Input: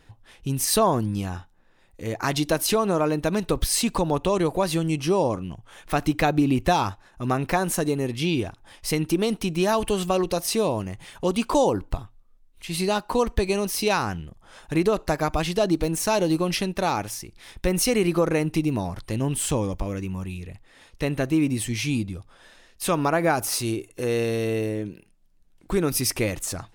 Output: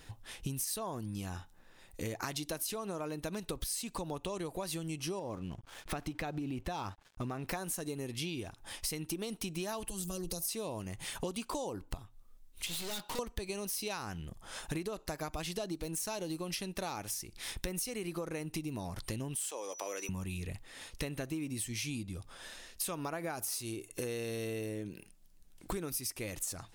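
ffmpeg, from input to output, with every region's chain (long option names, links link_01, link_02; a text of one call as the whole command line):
ffmpeg -i in.wav -filter_complex "[0:a]asettb=1/sr,asplit=3[link_01][link_02][link_03];[link_01]atrim=end=5.194[link_04];[link_02]atrim=start=5.19:end=7.47,asetpts=PTS-STARTPTS,afade=type=in:duration=0.004:curve=qsin,afade=type=out:start_time=2.276:duration=0.004:curve=qsin,lowpass=frequency=3000:poles=1,aeval=exprs='sgn(val(0))*max(abs(val(0))-0.00237,0)':channel_layout=same,acompressor=threshold=-22dB:ratio=2.5:attack=3.2:release=140:knee=1:detection=peak[link_05];[link_03]atrim=start=7.466[link_06];[link_04][link_05]acrossfade=duration=0.004:curve1=hsin:curve2=qsin[link_07];[link_07][link_06]acrossfade=duration=0.004:curve1=qsin:curve2=hsin,asettb=1/sr,asplit=3[link_08][link_09][link_10];[link_08]atrim=end=9.884[link_11];[link_09]atrim=start=9.88:end=10.49,asetpts=PTS-STARTPTS,afade=type=in:duration=0.004:curve=qsin,afade=type=out:start_time=0.606:duration=0.004:curve=qsin,equalizer=frequency=2800:width_type=o:width=1.9:gain=-11,aecho=1:1:6:0.73,atrim=end_sample=26901,acrossover=split=130|3000[link_12][link_13][link_14];[link_13]acompressor=threshold=-34dB:ratio=4:attack=3.2:release=140:knee=2.83:detection=peak[link_15];[link_12][link_15][link_14]amix=inputs=3:normalize=0[link_16];[link_10]atrim=start=10.486[link_17];[link_11][link_16]acrossfade=duration=0.004:curve1=hsin:curve2=qsin[link_18];[link_18][link_17]acrossfade=duration=0.004:curve1=qsin:curve2=hsin,asettb=1/sr,asplit=3[link_19][link_20][link_21];[link_19]atrim=end=12.664[link_22];[link_20]atrim=start=12.66:end=13.19,asetpts=PTS-STARTPTS,afade=type=in:duration=0.004:curve=qsin,afade=type=out:start_time=0.526:duration=0.004:curve=qsin,highpass=frequency=120:width=0.5412,highpass=frequency=120:width=1.3066,equalizer=frequency=3400:width_type=o:width=0.34:gain=14.5,aeval=exprs='(tanh(70.8*val(0)+0.75)-tanh(0.75))/70.8':channel_layout=same[link_23];[link_21]atrim=start=13.186[link_24];[link_22][link_23]acrossfade=duration=0.004:curve1=hsin:curve2=qsin[link_25];[link_25][link_24]acrossfade=duration=0.004:curve1=qsin:curve2=hsin,asettb=1/sr,asplit=3[link_26][link_27][link_28];[link_26]atrim=end=19.354[link_29];[link_27]atrim=start=19.35:end=20.09,asetpts=PTS-STARTPTS,afade=type=in:duration=0.004:curve=qsin,afade=type=out:start_time=0.736:duration=0.004:curve=qsin,highpass=frequency=430:width=0.5412,highpass=frequency=430:width=1.3066,aeval=exprs='val(0)+0.00355*sin(2*PI*5900*n/s)':channel_layout=same[link_30];[link_28]atrim=start=20.086[link_31];[link_29][link_30]acrossfade=duration=0.004:curve1=hsin:curve2=qsin[link_32];[link_32][link_31]acrossfade=duration=0.004:curve1=qsin:curve2=hsin,highshelf=frequency=4000:gain=10,acompressor=threshold=-35dB:ratio=12" out.wav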